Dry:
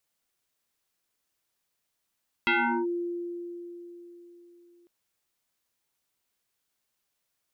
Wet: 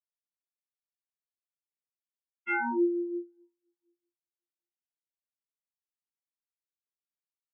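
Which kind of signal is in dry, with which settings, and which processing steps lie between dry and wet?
FM tone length 2.40 s, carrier 347 Hz, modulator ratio 1.69, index 4.8, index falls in 0.39 s linear, decay 3.87 s, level -20 dB
spectral gate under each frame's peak -15 dB strong; tape echo 381 ms, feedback 76%, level -12 dB, low-pass 3 kHz; spectral contrast expander 4:1

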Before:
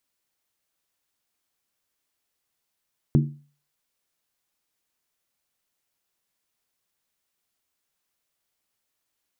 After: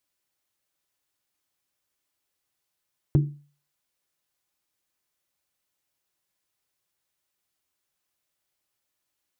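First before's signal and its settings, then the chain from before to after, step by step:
skin hit, lowest mode 145 Hz, decay 0.40 s, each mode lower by 5 dB, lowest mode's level -12.5 dB
comb of notches 230 Hz

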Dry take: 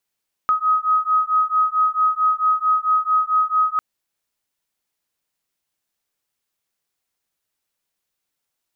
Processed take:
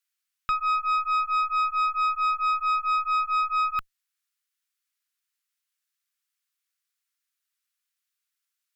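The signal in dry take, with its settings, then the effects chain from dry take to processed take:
beating tones 1.26 kHz, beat 4.5 Hz, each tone -18.5 dBFS 3.30 s
steep high-pass 1.2 kHz; valve stage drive 20 dB, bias 0.65

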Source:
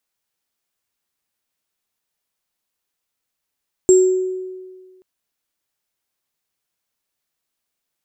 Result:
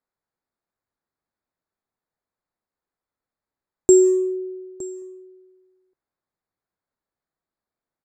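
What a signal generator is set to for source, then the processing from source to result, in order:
sine partials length 1.13 s, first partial 372 Hz, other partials 7.52 kHz, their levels -9 dB, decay 1.60 s, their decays 0.56 s, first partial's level -6 dB
local Wiener filter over 15 samples; delay 913 ms -19 dB

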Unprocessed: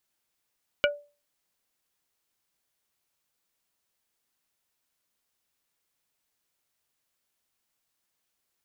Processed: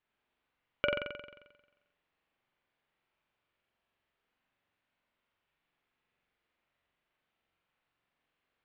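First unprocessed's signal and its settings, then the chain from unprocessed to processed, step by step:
wood hit plate, lowest mode 582 Hz, modes 4, decay 0.33 s, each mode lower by 0 dB, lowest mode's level -18.5 dB
compression, threshold -27 dBFS; low-pass 3 kHz 24 dB/octave; flutter echo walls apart 7.6 m, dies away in 1.1 s

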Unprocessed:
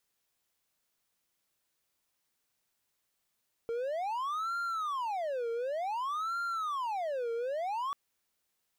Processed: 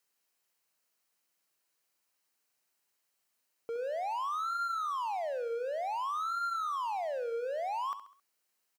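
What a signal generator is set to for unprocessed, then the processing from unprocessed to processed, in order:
siren wail 461–1390 Hz 0.55 per s triangle -29.5 dBFS 4.24 s
high-pass 300 Hz 6 dB/octave; band-stop 3.5 kHz, Q 9.5; on a send: feedback delay 67 ms, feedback 42%, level -11 dB

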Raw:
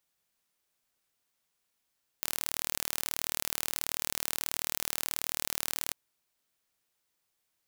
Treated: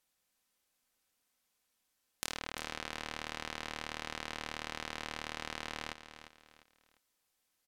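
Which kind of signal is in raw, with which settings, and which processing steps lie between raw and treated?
pulse train 38.5 per s, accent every 0, -4.5 dBFS 3.70 s
low-pass that closes with the level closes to 2.8 kHz, closed at -43.5 dBFS; comb 3.9 ms, depth 34%; on a send: feedback delay 350 ms, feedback 33%, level -11.5 dB

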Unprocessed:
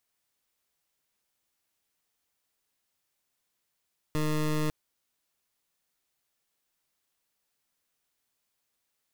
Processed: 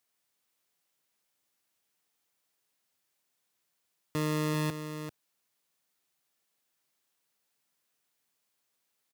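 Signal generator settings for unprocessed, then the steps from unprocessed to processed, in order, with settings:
pulse 153 Hz, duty 20% -27.5 dBFS 0.55 s
high-pass 110 Hz; on a send: delay 391 ms -9 dB

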